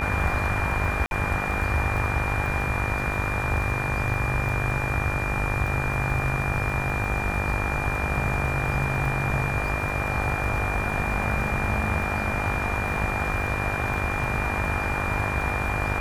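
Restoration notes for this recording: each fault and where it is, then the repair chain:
mains buzz 50 Hz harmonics 39 −31 dBFS
surface crackle 23 per second −31 dBFS
whistle 2,400 Hz −30 dBFS
0:01.06–0:01.11: drop-out 51 ms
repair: click removal
hum removal 50 Hz, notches 39
notch filter 2,400 Hz, Q 30
repair the gap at 0:01.06, 51 ms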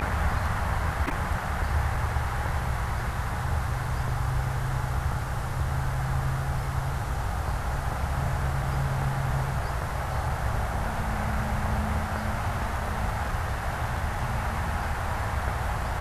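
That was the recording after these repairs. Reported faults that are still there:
none of them is left

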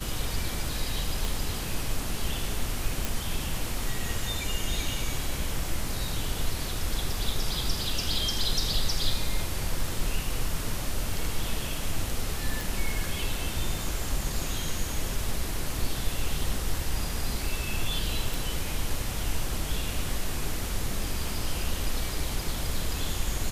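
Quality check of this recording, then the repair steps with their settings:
0:01.25: click
0:03.05: click
0:12.61: click
0:18.34: click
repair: click removal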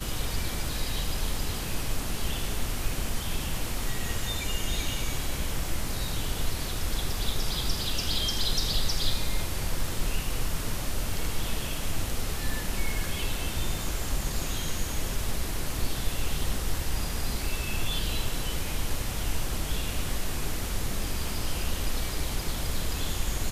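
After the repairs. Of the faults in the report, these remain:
0:01.25: click

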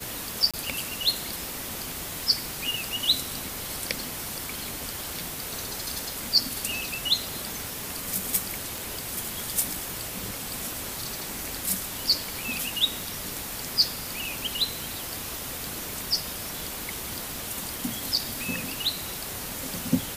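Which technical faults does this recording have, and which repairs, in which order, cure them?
scratch tick 33 1/3 rpm
0:00.51–0:00.54: drop-out 26 ms
0:08.78: click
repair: click removal
repair the gap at 0:00.51, 26 ms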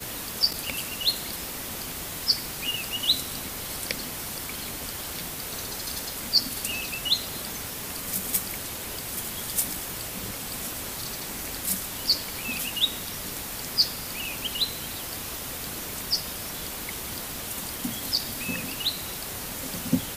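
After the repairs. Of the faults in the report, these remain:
none of them is left

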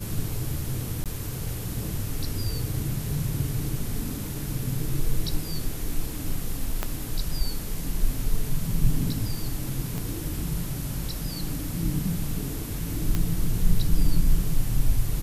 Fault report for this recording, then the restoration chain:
0:01.04–0:01.06: drop-out 17 ms
0:06.83: click −11 dBFS
0:09.98: click −19 dBFS
0:13.15: click −12 dBFS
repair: click removal
repair the gap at 0:01.04, 17 ms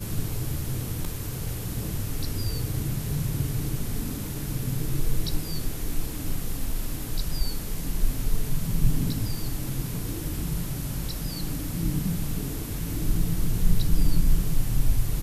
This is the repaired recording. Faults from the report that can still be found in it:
0:06.83: click
0:09.98: click

